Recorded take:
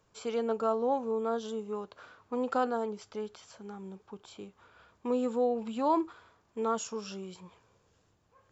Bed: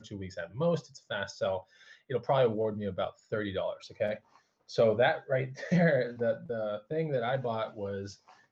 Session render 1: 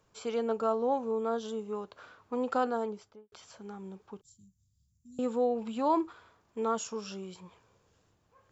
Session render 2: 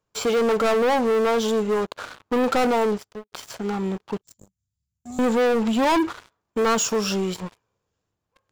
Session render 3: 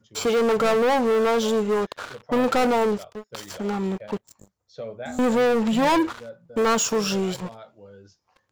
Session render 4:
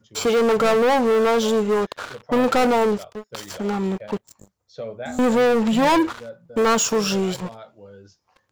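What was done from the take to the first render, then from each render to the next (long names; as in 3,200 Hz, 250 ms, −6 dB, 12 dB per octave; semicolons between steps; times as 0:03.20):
0:02.83–0:03.32: fade out and dull; 0:04.21–0:05.19: inverse Chebyshev band-stop filter 610–1,700 Hz, stop band 80 dB
leveller curve on the samples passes 5
mix in bed −10 dB
level +2.5 dB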